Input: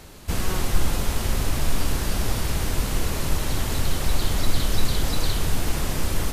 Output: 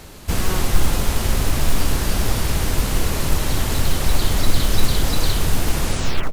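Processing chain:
turntable brake at the end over 0.53 s
in parallel at −3.5 dB: floating-point word with a short mantissa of 2 bits

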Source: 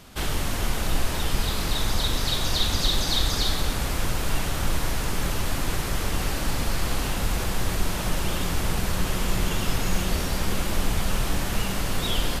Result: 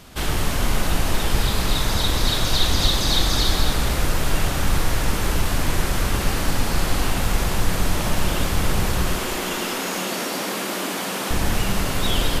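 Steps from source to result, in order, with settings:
0:09.08–0:11.31: high-pass filter 230 Hz 24 dB per octave
delay that swaps between a low-pass and a high-pass 105 ms, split 2,400 Hz, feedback 59%, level −3 dB
level +3 dB

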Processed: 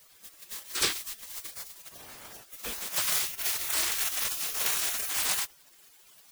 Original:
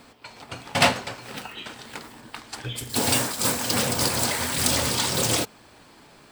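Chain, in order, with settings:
bit-depth reduction 6 bits, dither triangular
0:01.92–0:02.43: tilt shelving filter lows −9 dB, about 1,300 Hz
gate on every frequency bin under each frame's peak −15 dB weak

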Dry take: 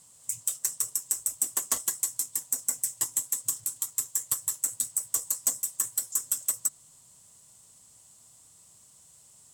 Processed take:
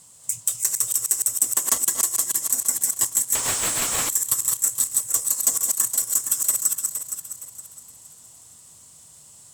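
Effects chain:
feedback delay that plays each chunk backwards 233 ms, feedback 58%, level −4 dB
0:03.35–0:04.09: mid-hump overdrive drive 34 dB, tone 1,900 Hz, clips at −11.5 dBFS
level +6 dB

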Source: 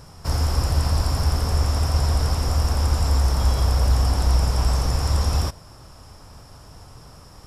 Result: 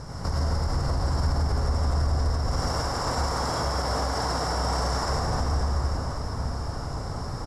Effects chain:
0:02.46–0:05.04: high-pass filter 500 Hz 6 dB per octave
downward compressor, threshold −29 dBFS, peak gain reduction 14 dB
convolution reverb RT60 2.3 s, pre-delay 73 ms, DRR −5 dB
brickwall limiter −23 dBFS, peak gain reduction 8.5 dB
low-pass filter 6,500 Hz 12 dB per octave
parametric band 3,100 Hz −10.5 dB 0.75 octaves
notch filter 2,500 Hz, Q 9
single-tap delay 775 ms −10 dB
level +6 dB

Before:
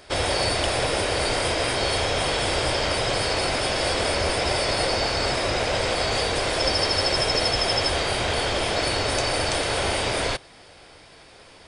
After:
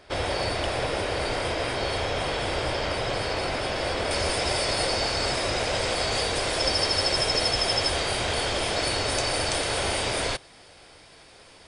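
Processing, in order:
high-shelf EQ 5,300 Hz −9.5 dB, from 0:04.11 +4.5 dB
level −3 dB

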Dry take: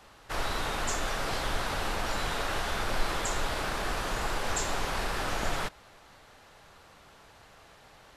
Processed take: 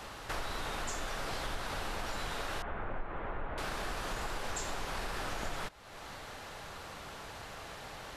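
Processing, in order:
0:02.62–0:03.58: Bessel low-pass filter 1,500 Hz, order 6
downward compressor 3 to 1, threshold −50 dBFS, peak gain reduction 21 dB
level +9.5 dB

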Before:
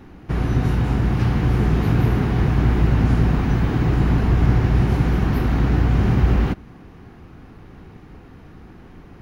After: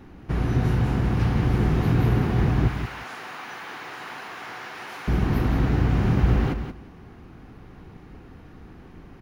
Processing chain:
0:02.68–0:05.08: high-pass filter 990 Hz 12 dB per octave
repeating echo 178 ms, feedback 16%, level −8.5 dB
level −3 dB

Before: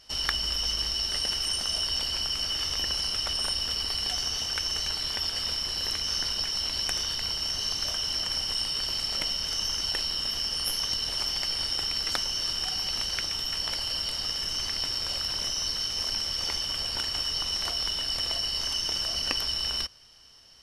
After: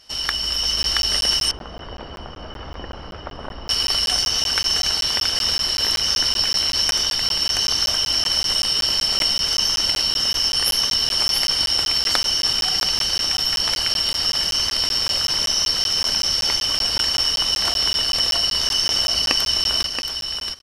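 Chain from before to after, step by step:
low-shelf EQ 110 Hz −5.5 dB
single-tap delay 676 ms −6 dB
automatic gain control gain up to 4.5 dB
0:01.51–0:03.69: low-pass filter 1,000 Hz 12 dB per octave
regular buffer underruns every 0.19 s, samples 512, zero, from 0:00.83
level +4.5 dB

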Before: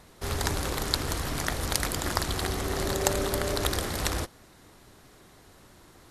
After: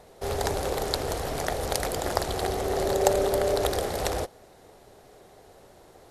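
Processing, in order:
flat-topped bell 570 Hz +10.5 dB 1.3 octaves
level −2.5 dB

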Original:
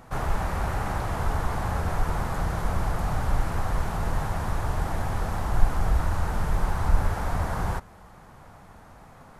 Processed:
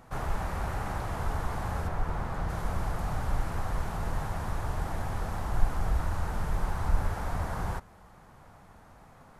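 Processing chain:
0:01.87–0:02.48: high-shelf EQ 3,800 Hz → 6,000 Hz −10 dB
level −5 dB

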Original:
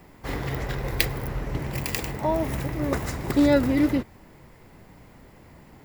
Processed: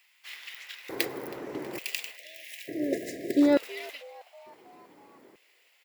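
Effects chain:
auto-filter high-pass square 0.56 Hz 340–2,700 Hz
echo with shifted repeats 321 ms, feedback 60%, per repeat +110 Hz, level −22 dB
time-frequency box erased 0:02.17–0:03.42, 720–1,600 Hz
level −6 dB

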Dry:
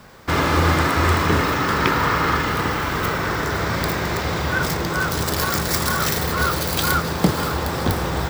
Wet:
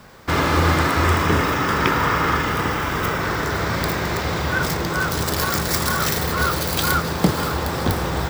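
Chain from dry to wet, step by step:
0:01.04–0:03.21: notch filter 4,200 Hz, Q 9.2

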